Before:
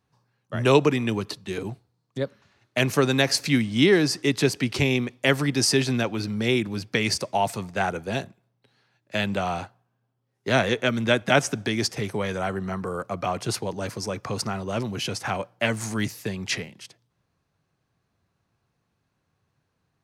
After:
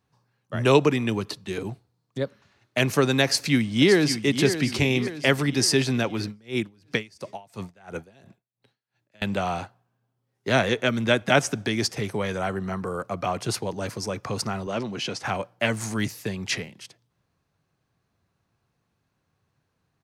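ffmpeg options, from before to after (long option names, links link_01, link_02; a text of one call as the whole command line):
ffmpeg -i in.wav -filter_complex "[0:a]asplit=2[link_01][link_02];[link_02]afade=type=in:start_time=3.24:duration=0.01,afade=type=out:start_time=4.28:duration=0.01,aecho=0:1:570|1140|1710|2280|2850|3420:0.334965|0.167483|0.0837414|0.0418707|0.0209353|0.0104677[link_03];[link_01][link_03]amix=inputs=2:normalize=0,asettb=1/sr,asplit=3[link_04][link_05][link_06];[link_04]atrim=end=6.254[link_07];[link_05]atrim=start=6.25:end=9.22,asetpts=PTS-STARTPTS,afade=type=in:duration=0.004:curve=qsin,afade=type=out:start_time=2.966:duration=0.004:curve=qsin,aeval=exprs='val(0)*pow(10,-30*(0.5-0.5*cos(2*PI*2.9*n/s))/20)':channel_layout=same[link_08];[link_06]atrim=start=9.216[link_09];[link_07][link_08]acrossfade=duration=0.004:curve1=hsin:curve2=qsin[link_10];[link_10][link_09]acrossfade=duration=0.004:curve1=qsin:curve2=hsin,asettb=1/sr,asplit=3[link_11][link_12][link_13];[link_11]atrim=end=14.674[link_14];[link_12]atrim=start=14.67:end=15.23,asetpts=PTS-STARTPTS,afade=type=in:duration=0.004:curve=qsin,afade=type=out:start_time=0.556:duration=0.004:curve=qsin,highpass=160,lowpass=6500[link_15];[link_13]atrim=start=15.226[link_16];[link_14][link_15]acrossfade=duration=0.004:curve1=hsin:curve2=qsin[link_17];[link_17][link_16]acrossfade=duration=0.004:curve1=qsin:curve2=hsin" out.wav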